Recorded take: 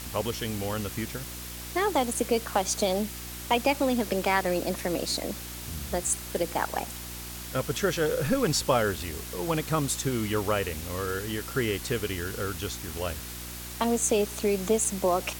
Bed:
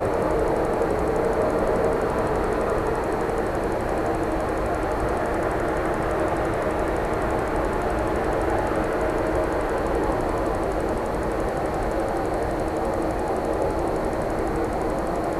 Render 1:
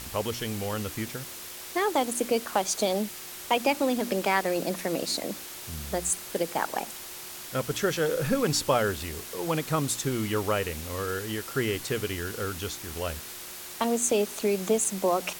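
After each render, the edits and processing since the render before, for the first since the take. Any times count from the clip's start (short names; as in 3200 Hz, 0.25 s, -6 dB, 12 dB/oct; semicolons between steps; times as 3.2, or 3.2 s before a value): de-hum 60 Hz, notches 5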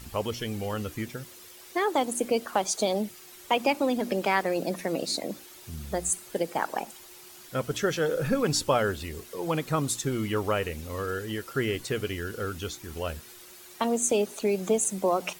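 denoiser 10 dB, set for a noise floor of -41 dBFS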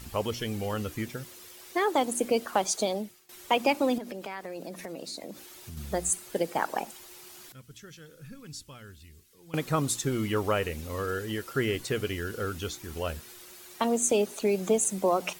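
2.72–3.29 fade out, to -19.5 dB; 3.98–5.77 compressor 3:1, threshold -38 dBFS; 7.52–9.54 passive tone stack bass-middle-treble 6-0-2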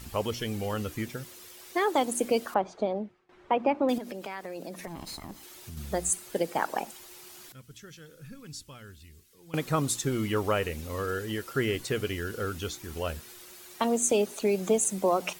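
2.54–3.89 LPF 1500 Hz; 4.87–5.43 minimum comb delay 0.97 ms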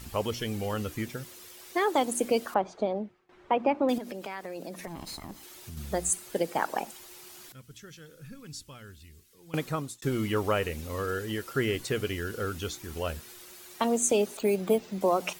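9.56–10.02 fade out; 14.37–15.01 careless resampling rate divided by 4×, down filtered, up hold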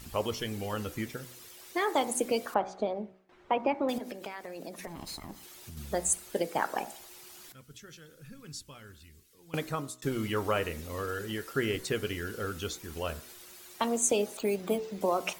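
de-hum 62.97 Hz, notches 37; harmonic-percussive split harmonic -4 dB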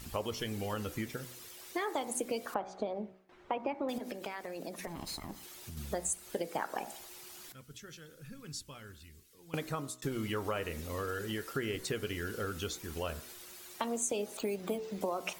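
compressor 3:1, threshold -33 dBFS, peak gain reduction 9 dB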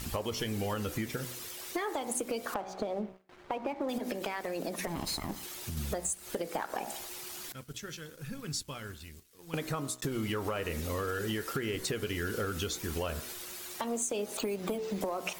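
compressor, threshold -37 dBFS, peak gain reduction 8.5 dB; sample leveller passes 2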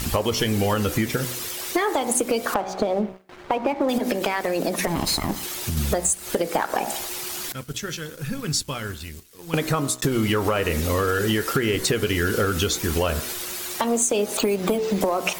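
gain +12 dB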